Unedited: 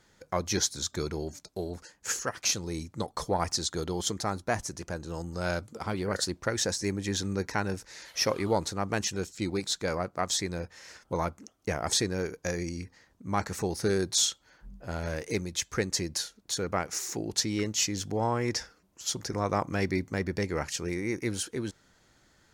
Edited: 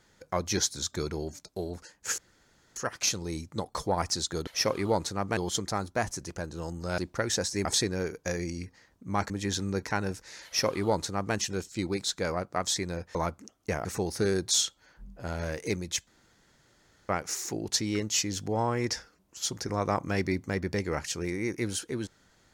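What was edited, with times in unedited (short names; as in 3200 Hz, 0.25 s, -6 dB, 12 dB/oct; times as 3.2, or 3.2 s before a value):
2.18 insert room tone 0.58 s
5.5–6.26 cut
8.08–8.98 copy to 3.89
10.78–11.14 cut
11.84–13.49 move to 6.93
15.71–16.73 room tone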